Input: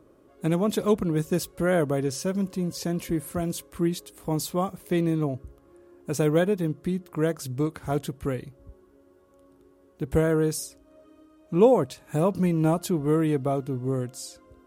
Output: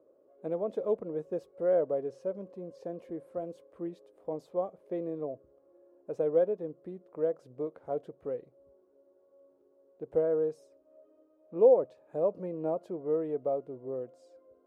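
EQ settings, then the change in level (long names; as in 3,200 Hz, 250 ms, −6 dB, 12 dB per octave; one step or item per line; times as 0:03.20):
resonant band-pass 540 Hz, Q 3.7
0.0 dB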